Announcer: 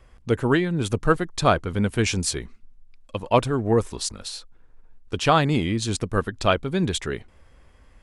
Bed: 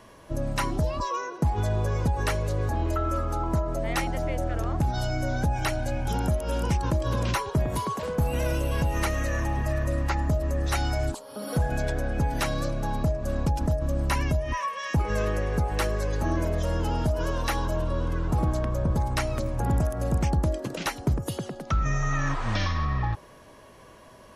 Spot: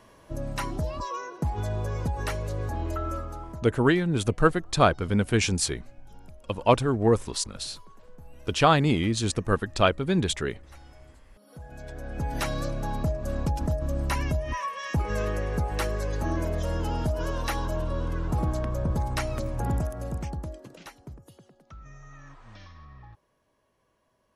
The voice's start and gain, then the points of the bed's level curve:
3.35 s, −1.0 dB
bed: 0:03.11 −4 dB
0:04.01 −25 dB
0:11.34 −25 dB
0:12.37 −2 dB
0:19.66 −2 dB
0:21.35 −21.5 dB

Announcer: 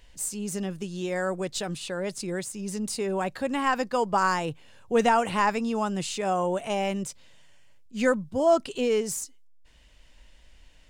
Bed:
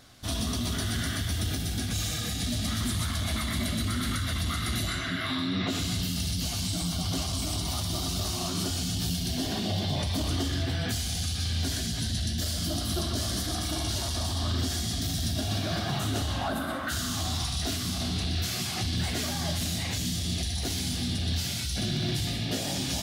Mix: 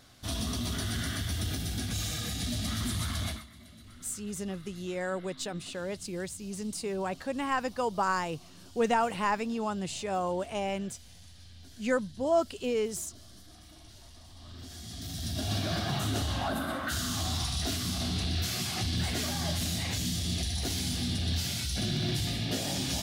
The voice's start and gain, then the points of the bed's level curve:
3.85 s, −5.0 dB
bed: 0:03.28 −3 dB
0:03.49 −23 dB
0:14.28 −23 dB
0:15.51 −1.5 dB

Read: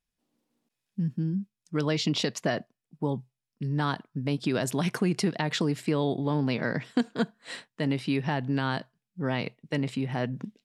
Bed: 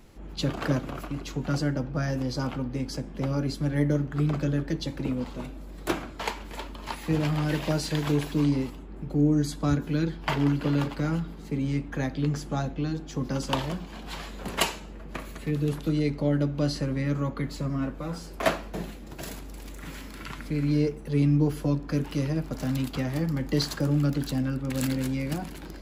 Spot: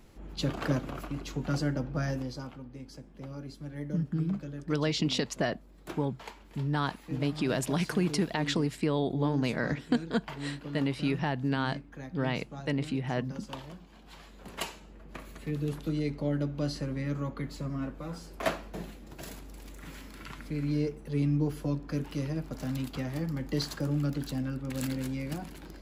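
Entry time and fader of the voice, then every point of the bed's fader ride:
2.95 s, −2.0 dB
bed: 0:02.10 −3 dB
0:02.54 −14 dB
0:14.07 −14 dB
0:15.51 −5.5 dB

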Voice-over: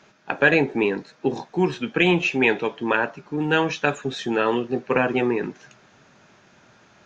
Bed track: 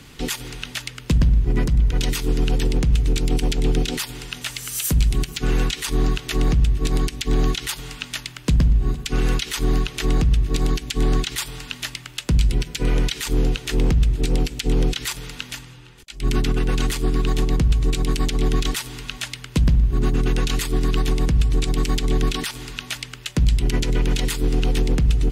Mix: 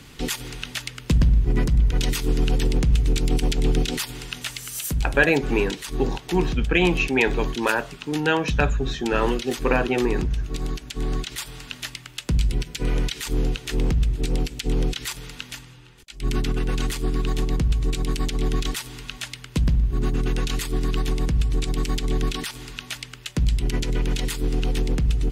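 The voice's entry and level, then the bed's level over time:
4.75 s, −1.0 dB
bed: 0:04.37 −1 dB
0:05.09 −7.5 dB
0:10.95 −7.5 dB
0:11.75 −3.5 dB

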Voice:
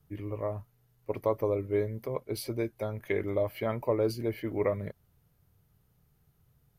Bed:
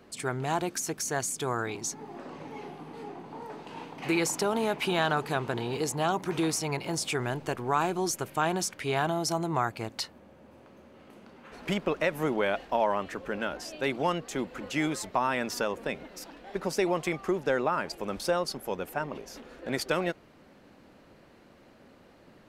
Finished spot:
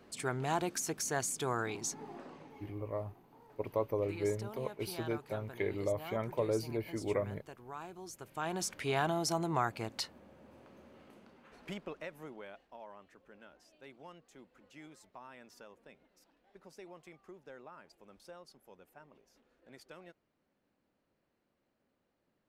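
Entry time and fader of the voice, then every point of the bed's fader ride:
2.50 s, −5.0 dB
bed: 0:02.10 −4 dB
0:02.82 −19 dB
0:08.05 −19 dB
0:08.72 −4 dB
0:10.93 −4 dB
0:12.71 −24.5 dB

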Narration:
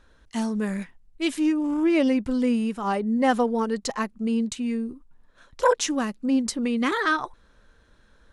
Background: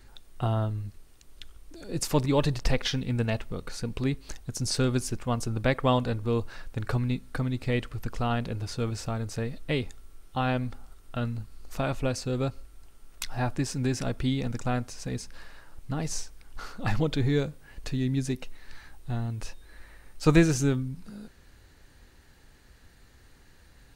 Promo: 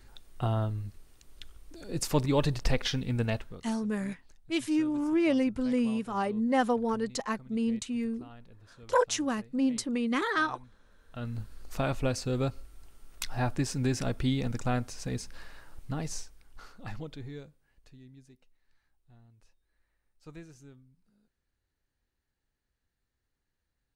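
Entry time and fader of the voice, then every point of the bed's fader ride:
3.30 s, −5.0 dB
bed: 0:03.33 −2 dB
0:03.88 −23 dB
0:10.81 −23 dB
0:11.39 −1 dB
0:15.76 −1 dB
0:18.30 −27.5 dB

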